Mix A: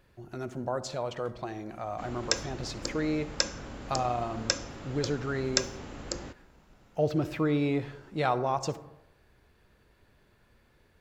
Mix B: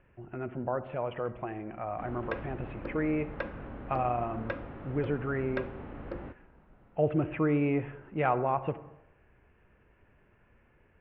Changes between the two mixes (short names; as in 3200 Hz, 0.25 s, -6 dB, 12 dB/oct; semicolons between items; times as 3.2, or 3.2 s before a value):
speech: add steep low-pass 2900 Hz 72 dB/oct; background: add Bessel low-pass 1600 Hz, order 8